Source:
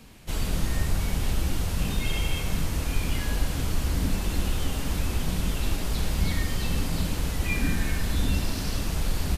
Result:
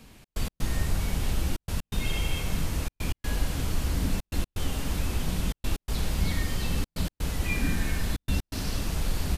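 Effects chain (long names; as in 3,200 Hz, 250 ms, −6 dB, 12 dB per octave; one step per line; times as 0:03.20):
gate pattern "xx.x.xxxxxx" 125 BPM −60 dB
level −1.5 dB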